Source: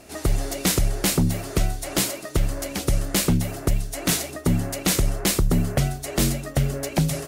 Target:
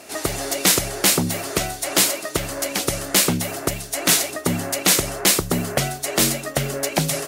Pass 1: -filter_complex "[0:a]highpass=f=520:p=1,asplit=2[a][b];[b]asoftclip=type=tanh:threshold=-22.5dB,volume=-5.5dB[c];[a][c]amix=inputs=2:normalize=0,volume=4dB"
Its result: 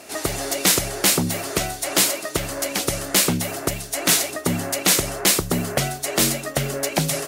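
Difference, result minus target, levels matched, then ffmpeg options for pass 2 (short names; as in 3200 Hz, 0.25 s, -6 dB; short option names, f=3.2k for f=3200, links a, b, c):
soft clip: distortion +8 dB
-filter_complex "[0:a]highpass=f=520:p=1,asplit=2[a][b];[b]asoftclip=type=tanh:threshold=-15.5dB,volume=-5.5dB[c];[a][c]amix=inputs=2:normalize=0,volume=4dB"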